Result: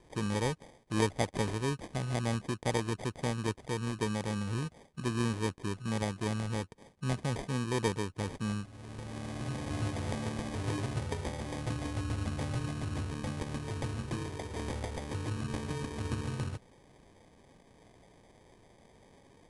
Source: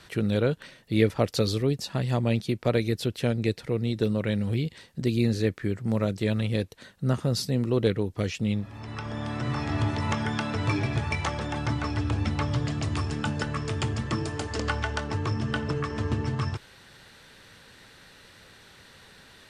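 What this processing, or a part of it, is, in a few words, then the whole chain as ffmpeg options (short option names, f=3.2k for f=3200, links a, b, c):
crushed at another speed: -af "asetrate=88200,aresample=44100,acrusher=samples=16:mix=1:aa=0.000001,asetrate=22050,aresample=44100,volume=-7.5dB"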